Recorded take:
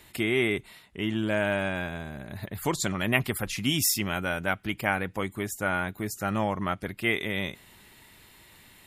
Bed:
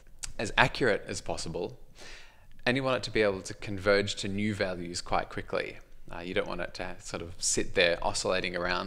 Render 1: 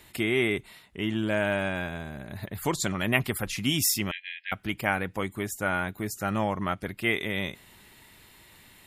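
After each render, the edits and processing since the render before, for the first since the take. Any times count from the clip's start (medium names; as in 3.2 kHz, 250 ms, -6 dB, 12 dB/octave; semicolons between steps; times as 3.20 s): 4.11–4.52 s: brick-wall FIR band-pass 1.6–5.4 kHz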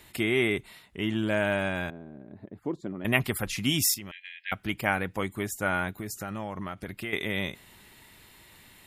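1.90–3.05 s: band-pass filter 310 Hz, Q 1.7; 3.94–4.43 s: compression 5:1, threshold -38 dBFS; 5.98–7.13 s: compression, threshold -31 dBFS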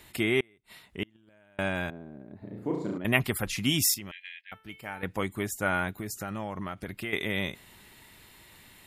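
0.40–1.59 s: inverted gate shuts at -20 dBFS, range -34 dB; 2.38–2.98 s: flutter echo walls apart 6 m, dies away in 0.8 s; 4.41–5.03 s: feedback comb 440 Hz, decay 0.48 s, mix 80%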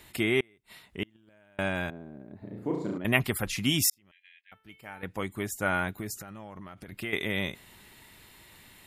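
3.90–5.70 s: fade in; 6.21–6.92 s: compression, threshold -40 dBFS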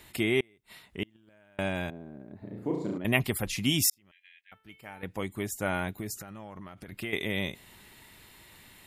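dynamic bell 1.4 kHz, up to -6 dB, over -49 dBFS, Q 1.8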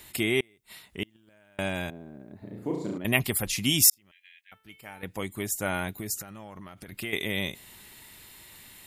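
treble shelf 4 kHz +8.5 dB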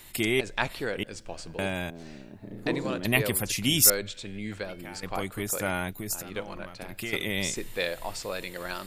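add bed -5.5 dB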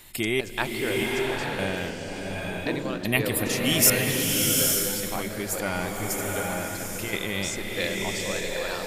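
swelling reverb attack 850 ms, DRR -1 dB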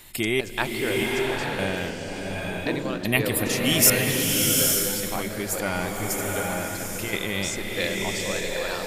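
trim +1.5 dB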